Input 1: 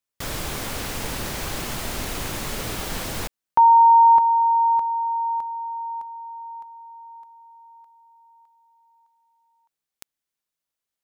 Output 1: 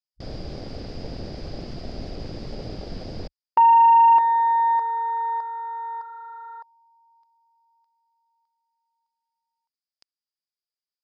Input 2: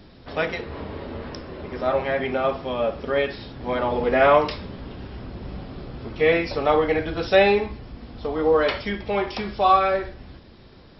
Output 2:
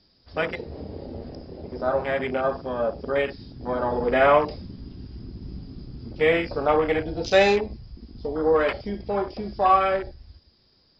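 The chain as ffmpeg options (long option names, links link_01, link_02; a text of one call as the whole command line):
ffmpeg -i in.wav -filter_complex "[0:a]lowpass=frequency=4900:width_type=q:width=15,acrossover=split=3200[link_01][link_02];[link_02]acompressor=threshold=-32dB:ratio=4:attack=1:release=60[link_03];[link_01][link_03]amix=inputs=2:normalize=0,afwtdn=0.0447,volume=-1.5dB" out.wav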